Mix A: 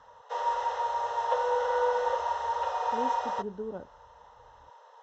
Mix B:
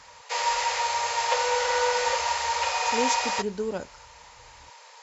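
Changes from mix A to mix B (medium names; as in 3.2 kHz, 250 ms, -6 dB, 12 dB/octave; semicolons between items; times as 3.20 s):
speech +6.5 dB; master: remove boxcar filter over 19 samples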